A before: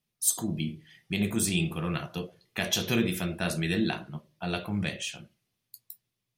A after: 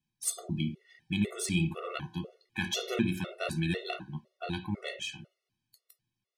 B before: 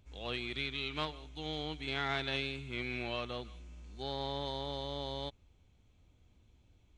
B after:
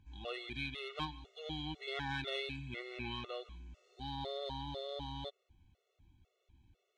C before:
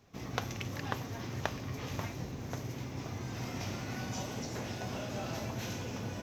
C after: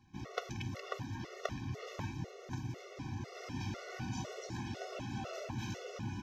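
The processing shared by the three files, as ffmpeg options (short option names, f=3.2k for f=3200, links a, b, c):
-af "adynamicsmooth=sensitivity=3:basefreq=7.8k,afftfilt=real='re*gt(sin(2*PI*2*pts/sr)*(1-2*mod(floor(b*sr/1024/370),2)),0)':imag='im*gt(sin(2*PI*2*pts/sr)*(1-2*mod(floor(b*sr/1024/370),2)),0)':win_size=1024:overlap=0.75"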